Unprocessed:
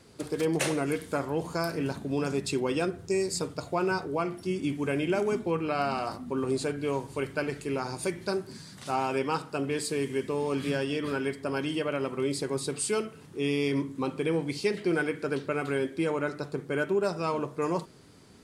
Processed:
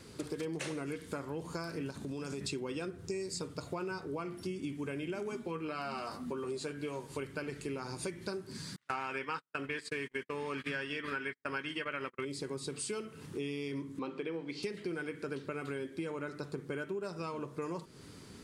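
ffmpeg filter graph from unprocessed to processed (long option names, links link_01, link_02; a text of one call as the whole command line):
ffmpeg -i in.wav -filter_complex "[0:a]asettb=1/sr,asplit=3[link_01][link_02][link_03];[link_01]atrim=end=1.904[link_04];[link_02]atrim=start=1.9:end=2.41,asetpts=PTS-STARTPTS,afade=type=in:duration=0.004:curve=qsin,afade=type=out:start_time=0.506:duration=0.004:curve=qsin,equalizer=frequency=7100:width_type=o:width=1.6:gain=6,acompressor=threshold=-34dB:ratio=4:attack=3.2:release=140:knee=1:detection=peak[link_05];[link_03]atrim=start=2.406[link_06];[link_04][link_05]acrossfade=duration=0.004:curve1=hsin:curve2=qsin[link_07];[link_07][link_06]acrossfade=duration=0.004:curve1=qsin:curve2=hsin,asettb=1/sr,asplit=3[link_08][link_09][link_10];[link_08]atrim=end=5.284[link_11];[link_09]atrim=start=5.28:end=7.17,asetpts=PTS-STARTPTS,afade=type=in:duration=0.004:curve=qsin,afade=type=out:start_time=1.886:duration=0.004:curve=qsin,lowshelf=frequency=180:gain=-8.5,asplit=2[link_12][link_13];[link_13]adelay=13,volume=-7dB[link_14];[link_12][link_14]amix=inputs=2:normalize=0,atrim=end_sample=83349[link_15];[link_10]atrim=start=7.166[link_16];[link_11][link_15]acrossfade=duration=0.004:curve1=hsin:curve2=qsin[link_17];[link_17][link_16]acrossfade=duration=0.004:curve1=qsin:curve2=hsin,asettb=1/sr,asplit=3[link_18][link_19][link_20];[link_18]atrim=end=8.764[link_21];[link_19]atrim=start=8.76:end=12.25,asetpts=PTS-STARTPTS,afade=type=in:duration=0.004:curve=qsin,afade=type=out:start_time=3.486:duration=0.004:curve=qsin,agate=range=-47dB:threshold=-33dB:ratio=16:release=100:detection=peak,equalizer=frequency=1800:width_type=o:width=1.8:gain=15[link_22];[link_20]atrim=start=12.246[link_23];[link_21][link_22]acrossfade=duration=0.004:curve1=hsin:curve2=qsin[link_24];[link_24][link_23]acrossfade=duration=0.004:curve1=qsin:curve2=hsin,asettb=1/sr,asplit=3[link_25][link_26][link_27];[link_25]atrim=end=13.994[link_28];[link_26]atrim=start=13.99:end=14.63,asetpts=PTS-STARTPTS,afade=type=in:duration=0.004:curve=qsin,afade=type=out:start_time=0.636:duration=0.004:curve=qsin,highpass=230,lowpass=4000,bandreject=frequency=50:width_type=h:width=6,bandreject=frequency=100:width_type=h:width=6,bandreject=frequency=150:width_type=h:width=6,bandreject=frequency=200:width_type=h:width=6,bandreject=frequency=250:width_type=h:width=6,bandreject=frequency=300:width_type=h:width=6,bandreject=frequency=350:width_type=h:width=6,bandreject=frequency=400:width_type=h:width=6[link_29];[link_27]atrim=start=14.626[link_30];[link_28][link_29]acrossfade=duration=0.004:curve1=hsin:curve2=qsin[link_31];[link_31][link_30]acrossfade=duration=0.004:curve1=qsin:curve2=hsin,acrossover=split=9300[link_32][link_33];[link_33]acompressor=threshold=-56dB:ratio=4:attack=1:release=60[link_34];[link_32][link_34]amix=inputs=2:normalize=0,equalizer=frequency=710:width=2.4:gain=-6,acompressor=threshold=-40dB:ratio=6,volume=3.5dB" out.wav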